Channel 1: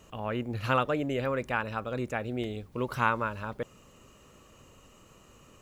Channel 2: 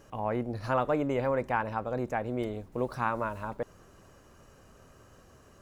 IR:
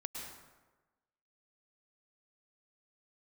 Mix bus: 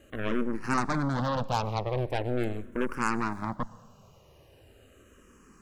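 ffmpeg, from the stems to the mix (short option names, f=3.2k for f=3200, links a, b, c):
-filter_complex "[0:a]volume=-3dB[a];[1:a]equalizer=f=190:t=o:w=1.2:g=6,aeval=exprs='0.188*(cos(1*acos(clip(val(0)/0.188,-1,1)))-cos(1*PI/2))+0.0473*(cos(8*acos(clip(val(0)/0.188,-1,1)))-cos(8*PI/2))':c=same,volume=-1.5dB,asplit=3[b][c][d];[c]volume=-14.5dB[e];[d]apad=whole_len=247572[f];[a][f]sidechaincompress=threshold=-28dB:ratio=8:attack=16:release=1110[g];[2:a]atrim=start_sample=2205[h];[e][h]afir=irnorm=-1:irlink=0[i];[g][b][i]amix=inputs=3:normalize=0,asplit=2[j][k];[k]afreqshift=-0.41[l];[j][l]amix=inputs=2:normalize=1"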